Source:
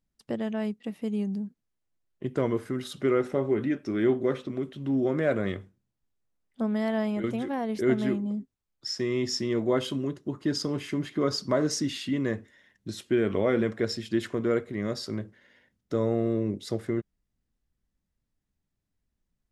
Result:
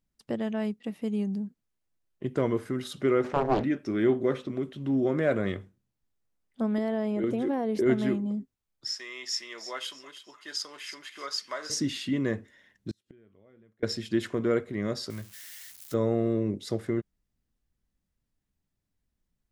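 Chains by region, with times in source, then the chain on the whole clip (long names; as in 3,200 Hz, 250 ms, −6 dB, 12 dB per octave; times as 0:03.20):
0:03.24–0:03.64: leveller curve on the samples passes 1 + high-frequency loss of the air 82 metres + highs frequency-modulated by the lows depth 0.99 ms
0:06.78–0:07.86: downward compressor 5 to 1, threshold −30 dBFS + parametric band 390 Hz +9 dB 1.6 octaves
0:08.94–0:11.70: high-pass filter 1,200 Hz + delay with a high-pass on its return 319 ms, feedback 34%, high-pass 1,600 Hz, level −11 dB
0:12.91–0:13.83: low-shelf EQ 170 Hz +9.5 dB + gate with flip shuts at −30 dBFS, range −36 dB
0:15.10–0:15.94: spike at every zero crossing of −34.5 dBFS + parametric band 370 Hz −12 dB 2 octaves
whole clip: no processing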